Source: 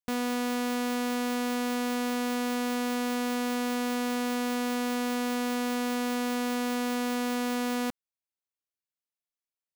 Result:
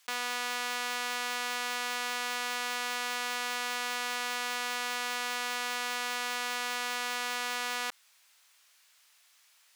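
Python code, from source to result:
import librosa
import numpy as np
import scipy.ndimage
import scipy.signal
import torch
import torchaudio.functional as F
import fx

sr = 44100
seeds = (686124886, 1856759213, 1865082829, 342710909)

y = scipy.signal.sosfilt(scipy.signal.butter(2, 1200.0, 'highpass', fs=sr, output='sos'), x)
y = fx.high_shelf(y, sr, hz=11000.0, db=-11.5)
y = fx.env_flatten(y, sr, amount_pct=50)
y = y * librosa.db_to_amplitude(4.5)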